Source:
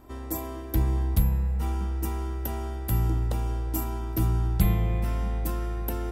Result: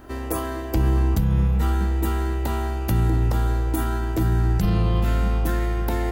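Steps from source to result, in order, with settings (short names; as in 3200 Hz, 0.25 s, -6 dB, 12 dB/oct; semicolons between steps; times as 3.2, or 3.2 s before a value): limiter -19.5 dBFS, peak gain reduction 11 dB; formant shift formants +5 st; gain +7 dB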